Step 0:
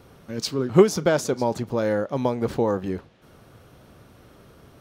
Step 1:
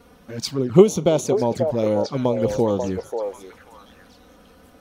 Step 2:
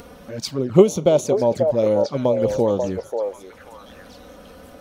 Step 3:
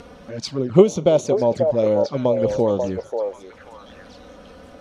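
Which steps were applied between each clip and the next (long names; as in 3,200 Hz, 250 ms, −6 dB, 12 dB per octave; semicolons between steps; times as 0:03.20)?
flanger swept by the level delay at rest 4.5 ms, full sweep at −19.5 dBFS; echo through a band-pass that steps 538 ms, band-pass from 640 Hz, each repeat 1.4 octaves, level −3 dB; level +3.5 dB
parametric band 580 Hz +7.5 dB 0.29 octaves; upward compression, threshold −33 dBFS; level −1 dB
low-pass filter 6,500 Hz 12 dB per octave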